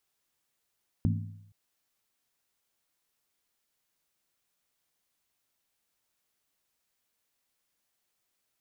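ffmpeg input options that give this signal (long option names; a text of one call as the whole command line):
ffmpeg -f lavfi -i "aevalsrc='0.0708*pow(10,-3*t/0.8)*sin(2*PI*102*t)+0.0501*pow(10,-3*t/0.634)*sin(2*PI*162.6*t)+0.0355*pow(10,-3*t/0.547)*sin(2*PI*217.9*t)+0.0251*pow(10,-3*t/0.528)*sin(2*PI*234.2*t)+0.0178*pow(10,-3*t/0.491)*sin(2*PI*270.6*t)':duration=0.47:sample_rate=44100" out.wav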